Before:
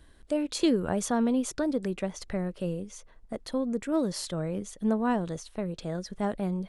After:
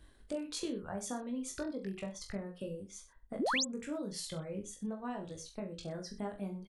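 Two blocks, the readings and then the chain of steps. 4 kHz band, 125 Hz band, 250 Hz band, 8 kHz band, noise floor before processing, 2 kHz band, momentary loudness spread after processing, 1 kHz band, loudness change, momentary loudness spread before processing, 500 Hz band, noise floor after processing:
−1.5 dB, −10.5 dB, −11.5 dB, −3.5 dB, −56 dBFS, −2.0 dB, 10 LU, −7.5 dB, −9.5 dB, 10 LU, −10.0 dB, −61 dBFS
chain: reverb reduction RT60 1.7 s
downward compressor 6 to 1, threshold −33 dBFS, peak gain reduction 12.5 dB
on a send: reverse bouncing-ball delay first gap 20 ms, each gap 1.1×, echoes 5
on the sum: sound drawn into the spectrogram rise, 0:03.39–0:03.65, 200–8,200 Hz −27 dBFS
level −5 dB

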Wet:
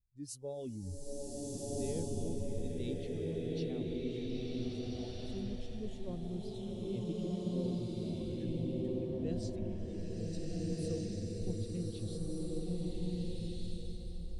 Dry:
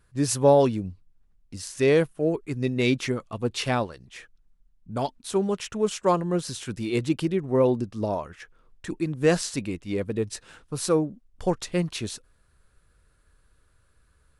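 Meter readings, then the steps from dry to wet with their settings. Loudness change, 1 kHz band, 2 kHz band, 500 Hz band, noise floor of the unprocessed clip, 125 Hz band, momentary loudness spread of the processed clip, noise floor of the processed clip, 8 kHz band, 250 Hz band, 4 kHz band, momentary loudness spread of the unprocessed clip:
−14.0 dB, −25.5 dB, −25.0 dB, −15.5 dB, −64 dBFS, −8.0 dB, 6 LU, −44 dBFS, −14.5 dB, −10.0 dB, −14.5 dB, 16 LU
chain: reversed playback
upward compression, threshold −26 dBFS
reversed playback
guitar amp tone stack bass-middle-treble 10-0-1
noise reduction from a noise print of the clip's start 15 dB
flat-topped bell 1,600 Hz −10 dB
on a send: echo through a band-pass that steps 635 ms, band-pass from 390 Hz, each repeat 0.7 octaves, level −9 dB
on the sum: slow-attack reverb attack 1,600 ms, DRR −6.5 dB
level +2 dB

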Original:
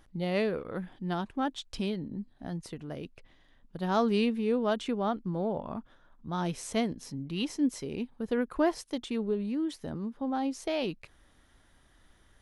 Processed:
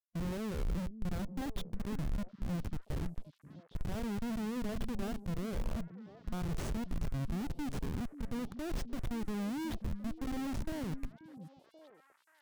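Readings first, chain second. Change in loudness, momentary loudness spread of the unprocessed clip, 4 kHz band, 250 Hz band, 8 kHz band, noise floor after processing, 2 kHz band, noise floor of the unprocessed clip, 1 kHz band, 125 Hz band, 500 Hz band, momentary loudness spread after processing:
−7.0 dB, 12 LU, −10.0 dB, −6.5 dB, −6.0 dB, −68 dBFS, −8.0 dB, −63 dBFS, −11.5 dB, 0.0 dB, −13.0 dB, 8 LU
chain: brickwall limiter −26.5 dBFS, peak gain reduction 11 dB
reversed playback
downward compressor 12 to 1, threshold −44 dBFS, peak gain reduction 15 dB
reversed playback
comparator with hysteresis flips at −45.5 dBFS
harmonic and percussive parts rebalanced harmonic +4 dB
low-shelf EQ 190 Hz +10.5 dB
echo through a band-pass that steps 533 ms, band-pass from 210 Hz, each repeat 1.4 octaves, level −9 dB
level +5 dB

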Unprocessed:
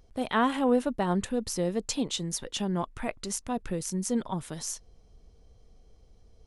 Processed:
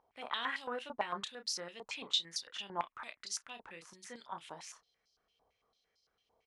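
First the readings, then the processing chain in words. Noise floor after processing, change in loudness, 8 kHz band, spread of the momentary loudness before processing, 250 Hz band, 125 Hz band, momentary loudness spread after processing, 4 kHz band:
−83 dBFS, −9.5 dB, −10.5 dB, 10 LU, −24.5 dB, −25.5 dB, 17 LU, −0.5 dB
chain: double-tracking delay 30 ms −8 dB
band-pass on a step sequencer 8.9 Hz 920–4,700 Hz
level +4.5 dB

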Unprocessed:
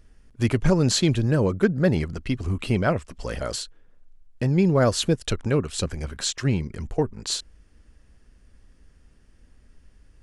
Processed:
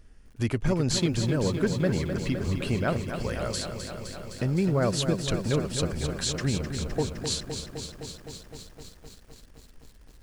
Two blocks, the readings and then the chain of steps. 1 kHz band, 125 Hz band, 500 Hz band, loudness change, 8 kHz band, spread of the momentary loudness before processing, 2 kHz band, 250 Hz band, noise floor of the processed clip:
−4.0 dB, −4.0 dB, −4.0 dB, −4.5 dB, −2.5 dB, 10 LU, −3.5 dB, −4.0 dB, −52 dBFS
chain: downward compressor 1.5 to 1, threshold −32 dBFS, peak gain reduction 7 dB
feedback echo at a low word length 257 ms, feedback 80%, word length 9 bits, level −8 dB

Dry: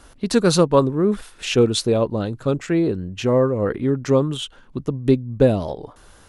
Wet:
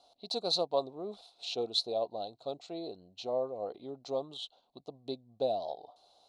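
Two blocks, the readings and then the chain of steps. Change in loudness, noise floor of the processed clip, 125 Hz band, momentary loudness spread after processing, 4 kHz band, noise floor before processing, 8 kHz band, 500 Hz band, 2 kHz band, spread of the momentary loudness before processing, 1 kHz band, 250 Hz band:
−16.0 dB, −72 dBFS, −32.0 dB, 14 LU, −6.5 dB, −50 dBFS, −20.0 dB, −15.5 dB, −25.5 dB, 11 LU, −11.0 dB, −25.0 dB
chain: pair of resonant band-passes 1,700 Hz, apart 2.5 octaves
level −1.5 dB

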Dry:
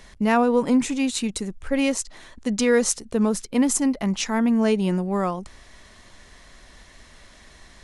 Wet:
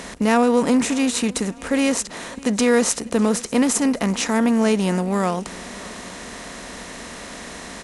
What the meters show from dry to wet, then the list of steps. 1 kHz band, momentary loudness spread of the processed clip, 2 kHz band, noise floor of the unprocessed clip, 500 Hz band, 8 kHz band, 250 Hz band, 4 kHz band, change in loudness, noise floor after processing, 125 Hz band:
+3.0 dB, 17 LU, +4.0 dB, −50 dBFS, +2.5 dB, +3.5 dB, +2.5 dB, +4.0 dB, +2.5 dB, −37 dBFS, +2.5 dB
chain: compressor on every frequency bin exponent 0.6
high-pass filter 45 Hz
on a send: repeating echo 600 ms, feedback 37%, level −22 dB

